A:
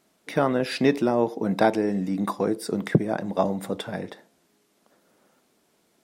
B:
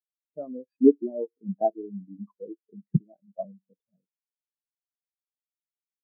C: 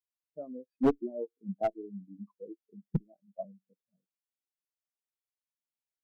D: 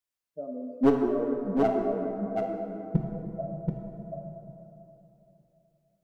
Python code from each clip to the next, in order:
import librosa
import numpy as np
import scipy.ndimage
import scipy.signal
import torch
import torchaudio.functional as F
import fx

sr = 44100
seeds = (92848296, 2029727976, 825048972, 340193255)

y1 = fx.spectral_expand(x, sr, expansion=4.0)
y2 = fx.clip_asym(y1, sr, top_db=-18.0, bottom_db=-8.5)
y2 = y2 * 10.0 ** (-5.5 / 20.0)
y3 = y2 + 10.0 ** (-4.0 / 20.0) * np.pad(y2, (int(731 * sr / 1000.0), 0))[:len(y2)]
y3 = fx.rev_plate(y3, sr, seeds[0], rt60_s=3.3, hf_ratio=0.4, predelay_ms=0, drr_db=1.5)
y3 = y3 * 10.0 ** (3.5 / 20.0)